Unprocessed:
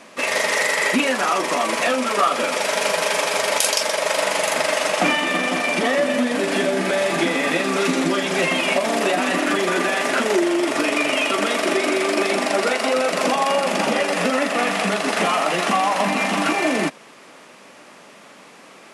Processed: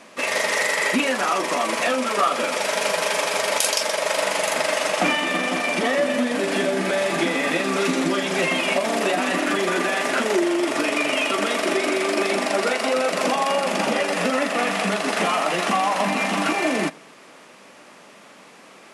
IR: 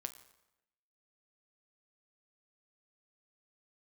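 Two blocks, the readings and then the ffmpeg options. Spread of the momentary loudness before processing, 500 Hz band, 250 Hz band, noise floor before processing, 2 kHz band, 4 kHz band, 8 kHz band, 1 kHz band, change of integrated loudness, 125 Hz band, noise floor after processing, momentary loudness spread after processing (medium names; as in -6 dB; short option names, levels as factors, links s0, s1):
2 LU, -1.5 dB, -2.0 dB, -45 dBFS, -2.0 dB, -2.0 dB, -2.0 dB, -2.0 dB, -2.0 dB, -1.5 dB, -47 dBFS, 2 LU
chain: -filter_complex "[0:a]asplit=2[s0][s1];[1:a]atrim=start_sample=2205[s2];[s1][s2]afir=irnorm=-1:irlink=0,volume=0.501[s3];[s0][s3]amix=inputs=2:normalize=0,volume=0.596"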